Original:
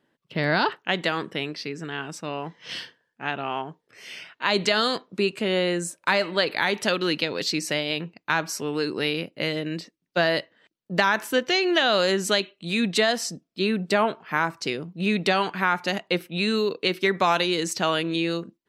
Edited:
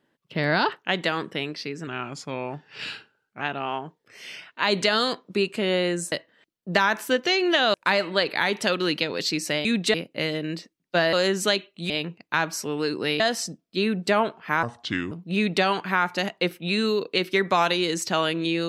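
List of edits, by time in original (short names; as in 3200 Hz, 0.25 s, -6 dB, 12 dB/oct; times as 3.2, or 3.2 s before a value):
1.87–3.24 speed 89%
7.86–9.16 swap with 12.74–13.03
10.35–11.97 move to 5.95
14.46–14.81 speed 72%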